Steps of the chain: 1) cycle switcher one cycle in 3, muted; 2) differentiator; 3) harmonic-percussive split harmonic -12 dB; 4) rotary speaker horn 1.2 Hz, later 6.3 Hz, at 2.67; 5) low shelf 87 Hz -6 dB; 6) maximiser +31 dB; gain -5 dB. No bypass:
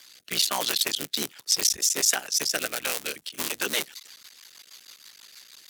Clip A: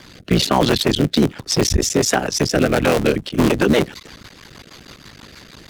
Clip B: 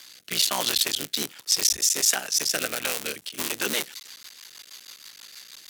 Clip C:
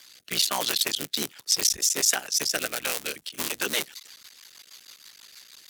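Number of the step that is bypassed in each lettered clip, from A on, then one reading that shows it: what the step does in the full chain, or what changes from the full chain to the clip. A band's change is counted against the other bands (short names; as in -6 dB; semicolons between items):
2, 125 Hz band +19.0 dB; 3, momentary loudness spread change +13 LU; 5, 125 Hz band +1.5 dB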